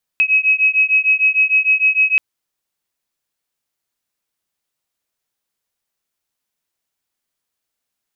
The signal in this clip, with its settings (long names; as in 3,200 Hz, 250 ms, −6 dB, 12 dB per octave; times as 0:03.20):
two tones that beat 2,550 Hz, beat 6.6 Hz, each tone −14.5 dBFS 1.98 s